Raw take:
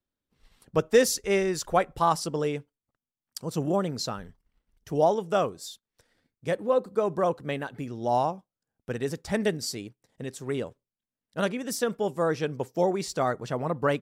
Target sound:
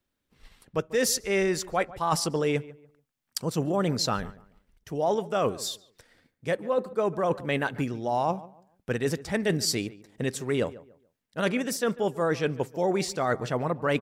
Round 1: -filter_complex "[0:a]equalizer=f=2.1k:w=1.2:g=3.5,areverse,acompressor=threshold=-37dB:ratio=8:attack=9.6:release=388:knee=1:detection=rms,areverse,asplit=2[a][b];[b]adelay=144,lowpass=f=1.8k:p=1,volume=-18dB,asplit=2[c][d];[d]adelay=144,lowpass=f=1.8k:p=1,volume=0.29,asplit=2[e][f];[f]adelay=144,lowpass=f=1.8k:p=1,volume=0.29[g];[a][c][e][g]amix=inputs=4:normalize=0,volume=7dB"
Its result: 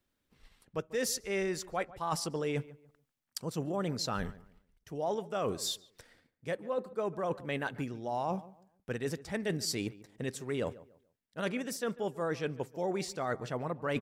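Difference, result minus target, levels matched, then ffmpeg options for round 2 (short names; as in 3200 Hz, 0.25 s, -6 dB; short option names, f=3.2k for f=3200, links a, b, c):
compressor: peak gain reduction +8 dB
-filter_complex "[0:a]equalizer=f=2.1k:w=1.2:g=3.5,areverse,acompressor=threshold=-28dB:ratio=8:attack=9.6:release=388:knee=1:detection=rms,areverse,asplit=2[a][b];[b]adelay=144,lowpass=f=1.8k:p=1,volume=-18dB,asplit=2[c][d];[d]adelay=144,lowpass=f=1.8k:p=1,volume=0.29,asplit=2[e][f];[f]adelay=144,lowpass=f=1.8k:p=1,volume=0.29[g];[a][c][e][g]amix=inputs=4:normalize=0,volume=7dB"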